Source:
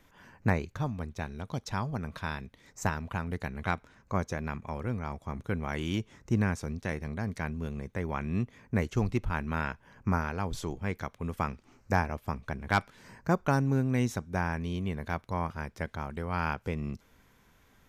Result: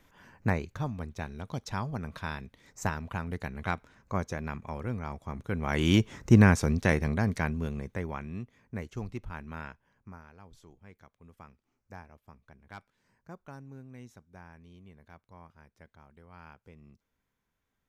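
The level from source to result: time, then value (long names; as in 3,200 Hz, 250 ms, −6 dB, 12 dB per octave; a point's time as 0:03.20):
0:05.50 −1 dB
0:05.90 +9 dB
0:06.92 +9 dB
0:07.99 −0.5 dB
0:08.41 −9 dB
0:09.66 −9 dB
0:10.14 −20 dB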